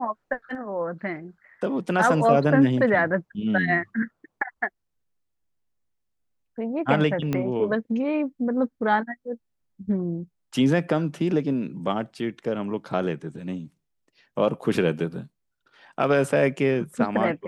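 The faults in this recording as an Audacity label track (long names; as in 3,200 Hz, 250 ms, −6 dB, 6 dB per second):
7.330000	7.330000	click −13 dBFS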